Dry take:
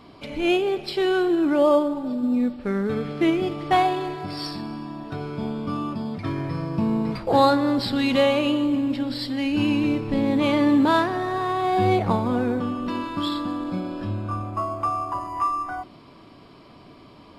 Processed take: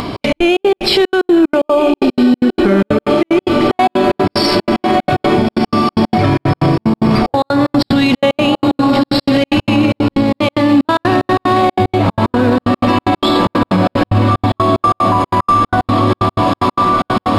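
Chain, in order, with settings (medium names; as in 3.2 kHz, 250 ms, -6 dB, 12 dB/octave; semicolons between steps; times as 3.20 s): peaking EQ 110 Hz +3.5 dB 0.31 oct; de-hum 147.3 Hz, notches 3; upward compressor, threshold -43 dBFS; echo that smears into a reverb 1364 ms, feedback 64%, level -9.5 dB; compression 4:1, threshold -28 dBFS, peak gain reduction 13.5 dB; trance gate "xx.x.xx.x.x" 186 bpm -60 dB; loudness maximiser +26.5 dB; trim -2.5 dB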